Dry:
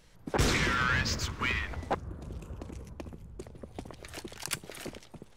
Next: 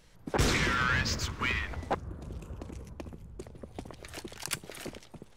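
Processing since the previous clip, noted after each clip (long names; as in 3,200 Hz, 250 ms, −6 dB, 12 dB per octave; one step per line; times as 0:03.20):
no processing that can be heard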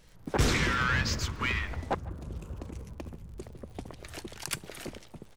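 surface crackle 60 per second −46 dBFS
low-shelf EQ 170 Hz +3 dB
far-end echo of a speakerphone 150 ms, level −20 dB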